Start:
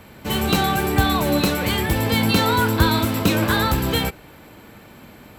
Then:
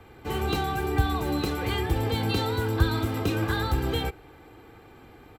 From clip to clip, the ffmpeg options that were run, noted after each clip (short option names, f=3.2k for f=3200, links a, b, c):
-filter_complex "[0:a]highshelf=f=3.2k:g=-11,aecho=1:1:2.5:0.64,acrossover=split=250|3000[a][b][c];[b]acompressor=threshold=-22dB:ratio=6[d];[a][d][c]amix=inputs=3:normalize=0,volume=-5.5dB"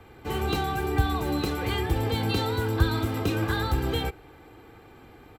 -af anull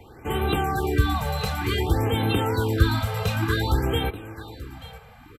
-af "aecho=1:1:883:0.168,aresample=32000,aresample=44100,afftfilt=real='re*(1-between(b*sr/1024,280*pow(5900/280,0.5+0.5*sin(2*PI*0.55*pts/sr))/1.41,280*pow(5900/280,0.5+0.5*sin(2*PI*0.55*pts/sr))*1.41))':imag='im*(1-between(b*sr/1024,280*pow(5900/280,0.5+0.5*sin(2*PI*0.55*pts/sr))/1.41,280*pow(5900/280,0.5+0.5*sin(2*PI*0.55*pts/sr))*1.41))':win_size=1024:overlap=0.75,volume=3.5dB"